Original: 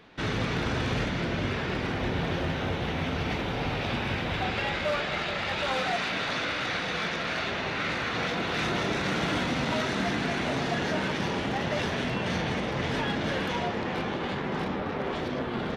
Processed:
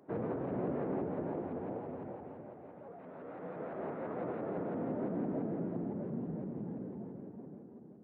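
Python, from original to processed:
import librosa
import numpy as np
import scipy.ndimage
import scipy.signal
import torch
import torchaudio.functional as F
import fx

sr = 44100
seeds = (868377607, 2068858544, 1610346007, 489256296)

y = fx.fade_out_tail(x, sr, length_s=3.33)
y = fx.doppler_pass(y, sr, speed_mps=9, closest_m=2.9, pass_at_s=4.97)
y = fx.hum_notches(y, sr, base_hz=50, count=5)
y = fx.over_compress(y, sr, threshold_db=-53.0, ratio=-1.0)
y = fx.filter_sweep_lowpass(y, sr, from_hz=620.0, to_hz=280.0, start_s=8.53, end_s=11.54, q=0.99)
y = fx.stretch_vocoder(y, sr, factor=0.51)
y = fx.bandpass_edges(y, sr, low_hz=190.0, high_hz=2200.0)
y = fx.echo_feedback(y, sr, ms=380, feedback_pct=52, wet_db=-6.0)
y = fx.vibrato_shape(y, sr, shape='saw_up', rate_hz=5.9, depth_cents=160.0)
y = y * 10.0 ** (15.0 / 20.0)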